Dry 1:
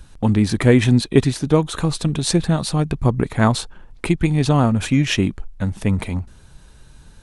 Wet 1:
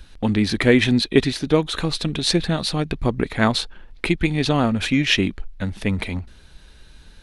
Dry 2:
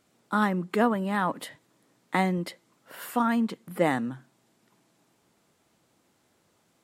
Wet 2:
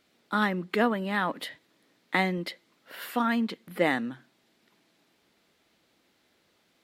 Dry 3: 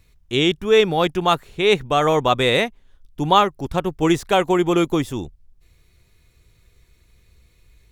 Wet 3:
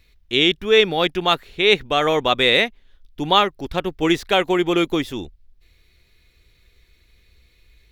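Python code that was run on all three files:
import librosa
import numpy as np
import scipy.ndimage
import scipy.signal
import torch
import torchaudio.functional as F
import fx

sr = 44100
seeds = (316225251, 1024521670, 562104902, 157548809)

y = fx.graphic_eq(x, sr, hz=(125, 1000, 2000, 4000, 8000), db=(-8, -4, 4, 6, -7))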